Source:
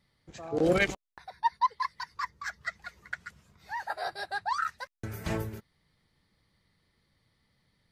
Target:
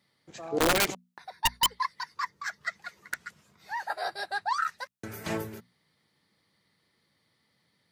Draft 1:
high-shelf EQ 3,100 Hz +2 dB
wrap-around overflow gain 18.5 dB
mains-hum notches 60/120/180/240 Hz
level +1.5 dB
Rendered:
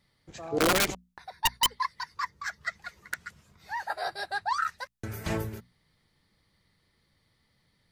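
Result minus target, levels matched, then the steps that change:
125 Hz band +4.5 dB
add first: high-pass filter 160 Hz 12 dB per octave

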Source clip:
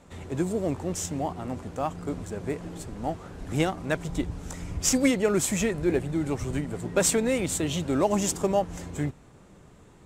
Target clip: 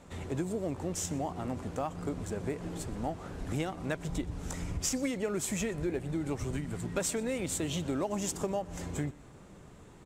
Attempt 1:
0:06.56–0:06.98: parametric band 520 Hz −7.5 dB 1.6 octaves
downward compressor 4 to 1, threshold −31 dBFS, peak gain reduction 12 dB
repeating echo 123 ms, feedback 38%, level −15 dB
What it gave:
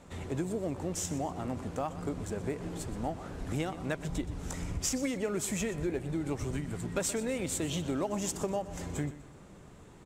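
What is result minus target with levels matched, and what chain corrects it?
echo-to-direct +7 dB
0:06.56–0:06.98: parametric band 520 Hz −7.5 dB 1.6 octaves
downward compressor 4 to 1, threshold −31 dBFS, peak gain reduction 12 dB
repeating echo 123 ms, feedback 38%, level −22 dB

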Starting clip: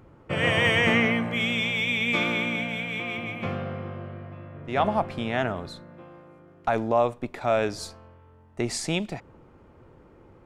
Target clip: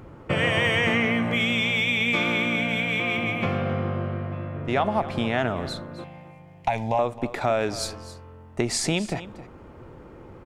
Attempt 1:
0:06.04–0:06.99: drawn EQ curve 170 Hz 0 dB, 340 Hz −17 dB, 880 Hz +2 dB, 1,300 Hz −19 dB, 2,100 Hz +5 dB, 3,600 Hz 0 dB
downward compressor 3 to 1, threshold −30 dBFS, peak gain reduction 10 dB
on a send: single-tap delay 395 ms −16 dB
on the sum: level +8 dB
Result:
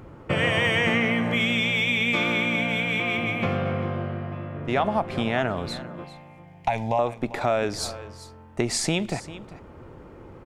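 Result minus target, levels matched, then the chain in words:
echo 129 ms late
0:06.04–0:06.99: drawn EQ curve 170 Hz 0 dB, 340 Hz −17 dB, 880 Hz +2 dB, 1,300 Hz −19 dB, 2,100 Hz +5 dB, 3,600 Hz 0 dB
downward compressor 3 to 1, threshold −30 dBFS, peak gain reduction 10 dB
on a send: single-tap delay 266 ms −16 dB
on the sum: level +8 dB

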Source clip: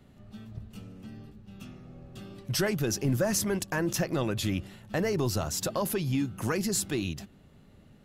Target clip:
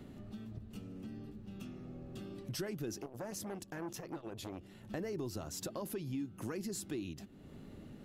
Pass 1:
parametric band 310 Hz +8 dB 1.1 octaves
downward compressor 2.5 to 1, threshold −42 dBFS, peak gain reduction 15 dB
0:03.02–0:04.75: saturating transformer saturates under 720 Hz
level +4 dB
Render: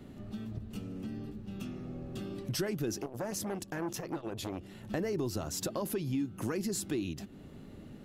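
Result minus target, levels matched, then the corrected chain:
downward compressor: peak gain reduction −6.5 dB
parametric band 310 Hz +8 dB 1.1 octaves
downward compressor 2.5 to 1, threshold −52.5 dBFS, peak gain reduction 21.5 dB
0:03.02–0:04.75: saturating transformer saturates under 720 Hz
level +4 dB

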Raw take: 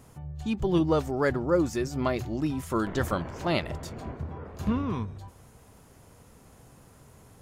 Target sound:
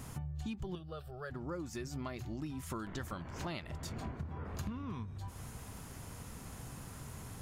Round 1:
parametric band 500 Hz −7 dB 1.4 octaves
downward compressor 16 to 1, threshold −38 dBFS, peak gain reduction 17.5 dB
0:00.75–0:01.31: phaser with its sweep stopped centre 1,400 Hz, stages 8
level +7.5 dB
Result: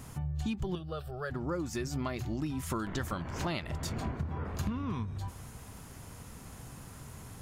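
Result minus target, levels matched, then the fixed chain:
downward compressor: peak gain reduction −6.5 dB
parametric band 500 Hz −7 dB 1.4 octaves
downward compressor 16 to 1, threshold −45 dBFS, peak gain reduction 24 dB
0:00.75–0:01.31: phaser with its sweep stopped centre 1,400 Hz, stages 8
level +7.5 dB

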